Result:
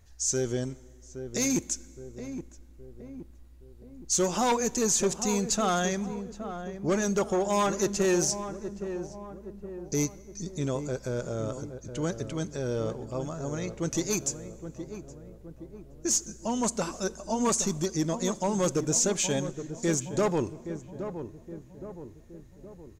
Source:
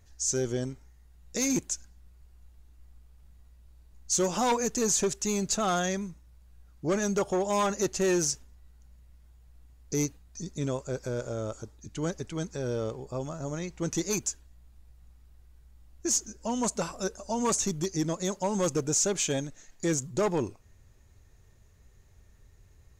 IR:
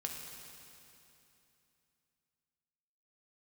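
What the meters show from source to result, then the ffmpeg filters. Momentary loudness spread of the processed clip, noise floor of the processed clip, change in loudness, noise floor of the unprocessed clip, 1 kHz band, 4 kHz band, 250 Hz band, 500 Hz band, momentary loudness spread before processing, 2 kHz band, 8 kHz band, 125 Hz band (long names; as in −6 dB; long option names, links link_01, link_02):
19 LU, −51 dBFS, +0.5 dB, −58 dBFS, +1.0 dB, +1.0 dB, +1.5 dB, +1.5 dB, 11 LU, +1.0 dB, +1.0 dB, +1.5 dB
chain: -filter_complex "[0:a]asplit=2[link_01][link_02];[link_02]adelay=819,lowpass=frequency=1000:poles=1,volume=-9dB,asplit=2[link_03][link_04];[link_04]adelay=819,lowpass=frequency=1000:poles=1,volume=0.55,asplit=2[link_05][link_06];[link_06]adelay=819,lowpass=frequency=1000:poles=1,volume=0.55,asplit=2[link_07][link_08];[link_08]adelay=819,lowpass=frequency=1000:poles=1,volume=0.55,asplit=2[link_09][link_10];[link_10]adelay=819,lowpass=frequency=1000:poles=1,volume=0.55,asplit=2[link_11][link_12];[link_12]adelay=819,lowpass=frequency=1000:poles=1,volume=0.55[link_13];[link_01][link_03][link_05][link_07][link_09][link_11][link_13]amix=inputs=7:normalize=0,asplit=2[link_14][link_15];[1:a]atrim=start_sample=2205,asetrate=61740,aresample=44100[link_16];[link_15][link_16]afir=irnorm=-1:irlink=0,volume=-14.5dB[link_17];[link_14][link_17]amix=inputs=2:normalize=0"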